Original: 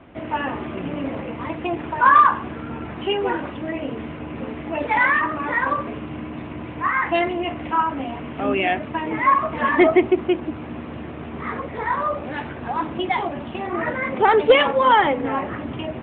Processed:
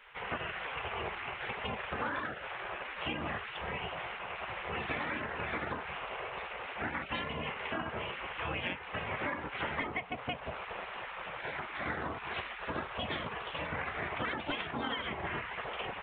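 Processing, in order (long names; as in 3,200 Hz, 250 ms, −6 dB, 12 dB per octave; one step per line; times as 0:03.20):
gate on every frequency bin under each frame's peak −15 dB weak
downward compressor 12 to 1, threshold −34 dBFS, peak gain reduction 15 dB
level +1.5 dB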